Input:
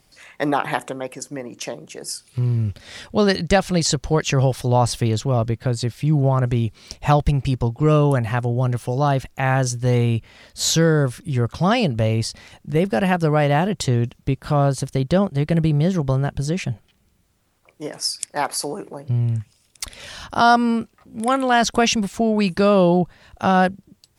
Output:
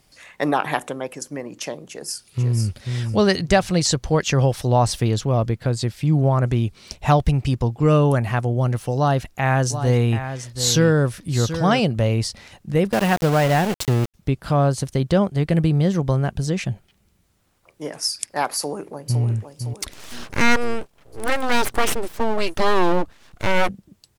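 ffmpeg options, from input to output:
-filter_complex "[0:a]asplit=2[s0][s1];[s1]afade=t=in:st=1.88:d=0.01,afade=t=out:st=2.85:d=0.01,aecho=0:1:490|980|1470:0.562341|0.0843512|0.0126527[s2];[s0][s2]amix=inputs=2:normalize=0,asettb=1/sr,asplit=3[s3][s4][s5];[s3]atrim=end=8.974[s6];[s4]atrim=start=8.97:end=11.8,asetpts=PTS-STARTPTS,afade=t=in:d=0.004:c=qsin,afade=t=out:st=2.826:d=0.004:c=qsin,aecho=1:1:731:0.299,atrim=end_sample=124803[s7];[s5]atrim=start=11.796[s8];[s6][s7]acrossfade=d=0.004:c1=hsin:c2=qsin[s9];[s9][s8]acrossfade=d=0.004:c1=qsin:c2=hsin,asettb=1/sr,asplit=3[s10][s11][s12];[s10]atrim=end=12.924[s13];[s11]atrim=start=12.92:end=14.14,asetpts=PTS-STARTPTS,afade=t=in:d=0.004:c=qsin,afade=t=out:st=1.216:d=0.004:c=qsin,aeval=exprs='val(0)*gte(abs(val(0)),0.075)':c=same[s14];[s12]atrim=start=14.136[s15];[s13][s14]acrossfade=d=0.004:c1=hsin:c2=qsin[s16];[s16][s15]acrossfade=d=0.004:c1=qsin:c2=hsin,asplit=2[s17][s18];[s18]afade=t=in:st=18.57:d=0.01,afade=t=out:st=19.22:d=0.01,aecho=0:1:510|1020|1530|2040|2550|3060:0.421697|0.210848|0.105424|0.0527121|0.026356|0.013178[s19];[s17][s19]amix=inputs=2:normalize=0,asettb=1/sr,asplit=3[s20][s21][s22];[s20]atrim=end=19.914[s23];[s21]atrim=start=19.91:end=23.69,asetpts=PTS-STARTPTS,afade=t=in:d=0.004:c=qsin,afade=t=out:st=3.776:d=0.004:c=qsin,aeval=exprs='abs(val(0))':c=same[s24];[s22]atrim=start=23.686[s25];[s23][s24]acrossfade=d=0.004:c1=hsin:c2=qsin[s26];[s26][s25]acrossfade=d=0.004:c1=qsin:c2=hsin"

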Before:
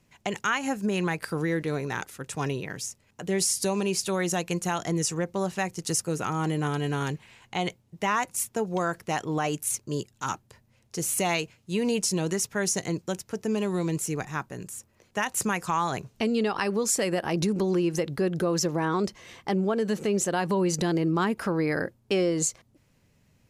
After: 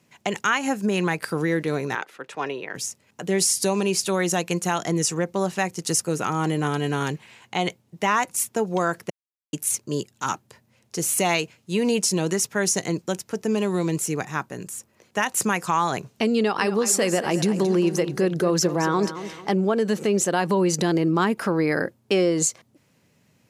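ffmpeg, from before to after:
-filter_complex "[0:a]asettb=1/sr,asplit=3[s0][s1][s2];[s0]atrim=end=1.954[s3];[s1]atrim=start=1.95:end=2.75,asetpts=PTS-STARTPTS,afade=t=in:d=0.004:c=qsin,afade=t=out:st=0.796:d=0.004:c=qsin,acrossover=split=320 3900:gain=0.141 1 0.126[s4][s5][s6];[s4][s5][s6]amix=inputs=3:normalize=0[s7];[s2]atrim=start=2.746[s8];[s3][s7]acrossfade=d=0.004:c1=hsin:c2=qsin[s9];[s9][s8]acrossfade=d=0.004:c1=qsin:c2=hsin,asettb=1/sr,asplit=3[s10][s11][s12];[s10]atrim=end=16.384[s13];[s11]atrim=start=16.38:end=19.52,asetpts=PTS-STARTPTS,afade=t=in:d=0.004:c=qsin,afade=t=out:st=3.136:d=0.004:c=qsin,aecho=1:1:223|446|669|892:0.251|0.0929|0.0344|0.0127,atrim=end_sample=138474[s14];[s12]atrim=start=19.516[s15];[s13][s14]acrossfade=d=0.004:c1=hsin:c2=qsin[s16];[s16][s15]acrossfade=d=0.004:c1=qsin:c2=hsin,asplit=3[s17][s18][s19];[s17]atrim=end=9.1,asetpts=PTS-STARTPTS,afade=t=out:st=9.096:d=0.004:c=hsin[s20];[s18]atrim=start=9.1:end=9.53,asetpts=PTS-STARTPTS,volume=0[s21];[s19]atrim=start=9.53,asetpts=PTS-STARTPTS,afade=t=in:d=0.004:c=hsin[s22];[s20][s21][s22]concat=n=3:v=0:a=1,highpass=140,volume=1.68"

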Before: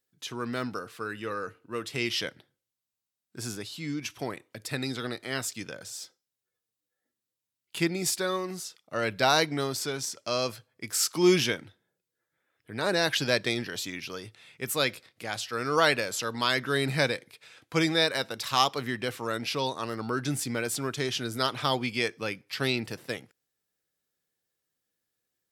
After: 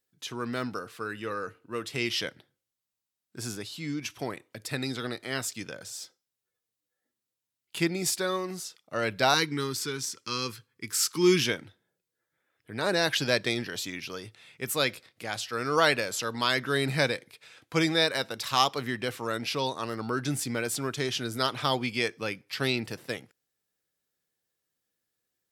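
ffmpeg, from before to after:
-filter_complex "[0:a]asettb=1/sr,asplit=3[s0][s1][s2];[s0]atrim=end=9.344[s3];[s1]atrim=start=9.34:end=11.46,asetpts=PTS-STARTPTS,afade=t=in:d=0.004:c=qsin,afade=t=out:st=2.116:d=0.004:c=qsin,asuperstop=centerf=650:order=4:qfactor=1.3[s4];[s2]atrim=start=11.456[s5];[s3][s4]acrossfade=d=0.004:c1=hsin:c2=qsin[s6];[s6][s5]acrossfade=d=0.004:c1=qsin:c2=hsin"

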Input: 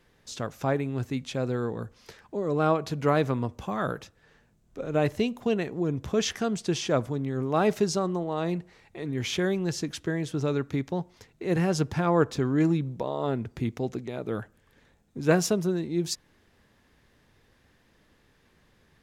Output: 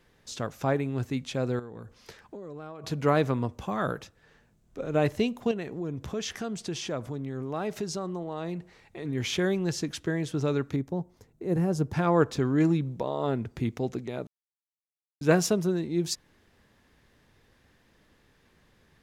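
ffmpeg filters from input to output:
-filter_complex "[0:a]asettb=1/sr,asplit=3[s0][s1][s2];[s0]atrim=end=1.594[s3];[s1]atrim=start=1.59:end=2.84,asetpts=PTS-STARTPTS,afade=t=in:d=0.004:c=qsin,afade=t=out:st=1.246:d=0.004:c=qsin,acompressor=threshold=0.0141:ratio=12:attack=3.2:release=140:knee=1:detection=peak[s4];[s2]atrim=start=2.836[s5];[s3][s4]acrossfade=d=0.004:c1=hsin:c2=qsin[s6];[s6][s5]acrossfade=d=0.004:c1=qsin:c2=hsin,asettb=1/sr,asplit=3[s7][s8][s9];[s7]atrim=end=5.514[s10];[s8]atrim=start=5.51:end=9.05,asetpts=PTS-STARTPTS,afade=t=in:d=0.004:c=qsin,afade=t=out:st=3.536:d=0.004:c=qsin,acompressor=threshold=0.02:ratio=2:attack=3.2:release=140:knee=1:detection=peak[s11];[s9]atrim=start=9.046[s12];[s10][s11]acrossfade=d=0.004:c1=hsin:c2=qsin[s13];[s13][s12]acrossfade=d=0.004:c1=qsin:c2=hsin,asettb=1/sr,asplit=3[s14][s15][s16];[s14]atrim=end=10.764[s17];[s15]atrim=start=10.76:end=11.93,asetpts=PTS-STARTPTS,afade=t=in:d=0.004:c=qsin,afade=t=out:st=1.166:d=0.004:c=qsin,equalizer=f=2900:w=0.42:g=-14[s18];[s16]atrim=start=11.926[s19];[s17][s18]acrossfade=d=0.004:c1=hsin:c2=qsin[s20];[s20][s19]acrossfade=d=0.004:c1=qsin:c2=hsin,asplit=3[s21][s22][s23];[s21]atrim=end=14.27,asetpts=PTS-STARTPTS,afade=t=out:st=14.266:d=0.004:c=hsin[s24];[s22]atrim=start=14.27:end=15.21,asetpts=PTS-STARTPTS,volume=0[s25];[s23]atrim=start=15.21,asetpts=PTS-STARTPTS,afade=t=in:d=0.004:c=hsin[s26];[s24][s25][s26]concat=n=3:v=0:a=1"

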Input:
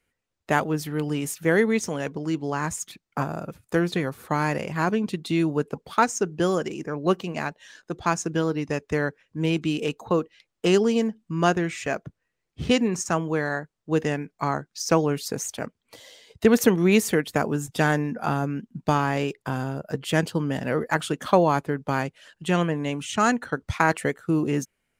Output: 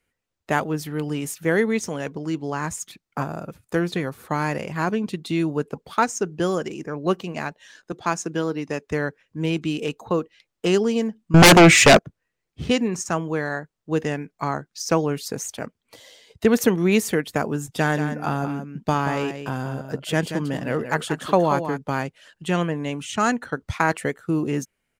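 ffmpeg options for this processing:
-filter_complex "[0:a]asettb=1/sr,asplit=3[s0][s1][s2];[s0]atrim=end=7.924[s3];[s1]atrim=start=7.92:end=8.87,asetpts=PTS-STARTPTS,afade=t=in:d=0.004:c=qsin,afade=t=out:st=0.946:d=0.004:c=qsin,highpass=160[s4];[s2]atrim=start=8.866[s5];[s3][s4]acrossfade=d=0.004:c1=hsin:c2=qsin[s6];[s6][s5]acrossfade=d=0.004:c1=qsin:c2=hsin,asettb=1/sr,asplit=3[s7][s8][s9];[s7]atrim=end=11.344[s10];[s8]atrim=start=11.34:end=11.99,asetpts=PTS-STARTPTS,afade=t=in:d=0.004:c=qsin,afade=t=out:st=0.646:d=0.004:c=qsin,aeval=exprs='0.501*sin(PI/2*7.94*val(0)/0.501)':c=same[s11];[s9]atrim=start=11.986[s12];[s10][s11]acrossfade=d=0.004:c1=hsin:c2=qsin[s13];[s13][s12]acrossfade=d=0.004:c1=qsin:c2=hsin,asplit=3[s14][s15][s16];[s14]afade=t=out:st=17.94:d=0.02[s17];[s15]aecho=1:1:181:0.355,afade=t=in:st=17.94:d=0.02,afade=t=out:st=21.77:d=0.02[s18];[s16]afade=t=in:st=21.77:d=0.02[s19];[s17][s18][s19]amix=inputs=3:normalize=0"

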